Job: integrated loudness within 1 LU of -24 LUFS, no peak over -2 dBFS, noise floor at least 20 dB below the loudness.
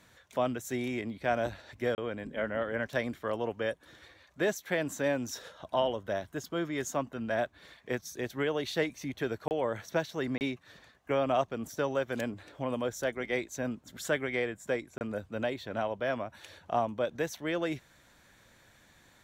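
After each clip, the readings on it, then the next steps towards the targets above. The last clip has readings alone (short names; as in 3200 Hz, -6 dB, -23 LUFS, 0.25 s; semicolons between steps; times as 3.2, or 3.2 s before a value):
dropouts 4; longest dropout 29 ms; loudness -33.5 LUFS; peak -16.0 dBFS; loudness target -24.0 LUFS
-> interpolate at 1.95/9.48/10.38/14.98, 29 ms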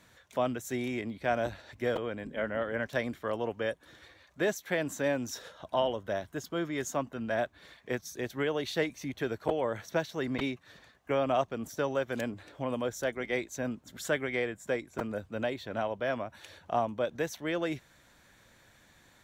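dropouts 0; loudness -33.5 LUFS; peak -16.0 dBFS; loudness target -24.0 LUFS
-> gain +9.5 dB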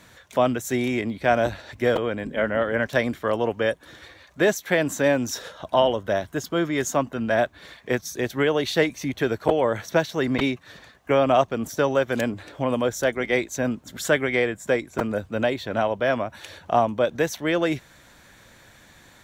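loudness -24.0 LUFS; peak -6.5 dBFS; noise floor -53 dBFS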